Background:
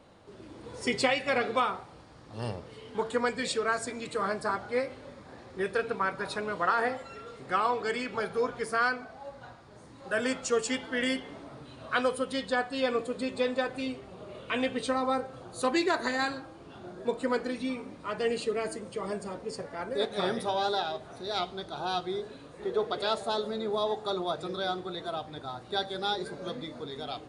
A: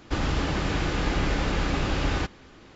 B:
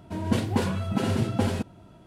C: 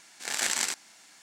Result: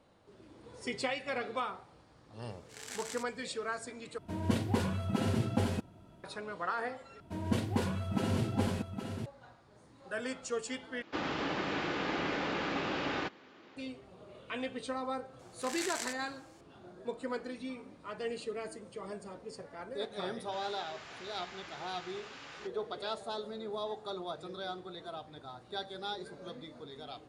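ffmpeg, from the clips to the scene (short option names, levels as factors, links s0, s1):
-filter_complex "[3:a]asplit=2[s0][s1];[2:a]asplit=2[s2][s3];[1:a]asplit=2[s4][s5];[0:a]volume=0.376[s6];[s3]aecho=1:1:816:0.422[s7];[s4]highpass=250,lowpass=4100[s8];[s5]highpass=970[s9];[s6]asplit=4[s10][s11][s12][s13];[s10]atrim=end=4.184[s14];[s2]atrim=end=2.06,asetpts=PTS-STARTPTS,volume=0.501[s15];[s11]atrim=start=6.236:end=7.204[s16];[s7]atrim=end=2.06,asetpts=PTS-STARTPTS,volume=0.447[s17];[s12]atrim=start=9.256:end=11.024[s18];[s8]atrim=end=2.75,asetpts=PTS-STARTPTS,volume=0.596[s19];[s13]atrim=start=13.766[s20];[s0]atrim=end=1.22,asetpts=PTS-STARTPTS,volume=0.15,afade=t=in:d=0.004:c=hsin,afade=t=out:st=1.216:d=0.004:c=hsin,adelay=2490[s21];[s1]atrim=end=1.22,asetpts=PTS-STARTPTS,volume=0.266,afade=t=in:d=0.004:c=hsin,afade=t=out:st=1.216:d=0.004:c=hsin,adelay=15390[s22];[s9]atrim=end=2.75,asetpts=PTS-STARTPTS,volume=0.158,afade=t=in:d=0.004:c=hsin,afade=t=out:st=2.746:d=0.004:c=hsin,adelay=20410[s23];[s14][s15]acrossfade=d=0.004:c1=hsin:c2=hsin[s24];[s24][s16]acrossfade=d=0.004:c1=hsin:c2=hsin[s25];[s25][s17]acrossfade=d=0.004:c1=hsin:c2=hsin[s26];[s26][s18]acrossfade=d=0.004:c1=hsin:c2=hsin[s27];[s27][s19]acrossfade=d=0.004:c1=hsin:c2=hsin[s28];[s28][s20]acrossfade=d=0.004:c1=hsin:c2=hsin[s29];[s29][s21][s22][s23]amix=inputs=4:normalize=0"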